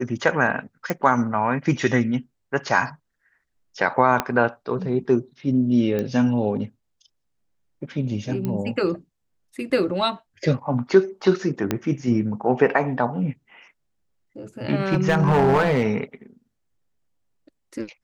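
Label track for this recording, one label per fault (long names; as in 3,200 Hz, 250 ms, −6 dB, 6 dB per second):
0.900000	0.900000	click −10 dBFS
4.200000	4.200000	click −6 dBFS
5.990000	5.990000	click −14 dBFS
8.450000	8.450000	click −15 dBFS
11.710000	11.710000	click −7 dBFS
14.920000	15.870000	clipping −13 dBFS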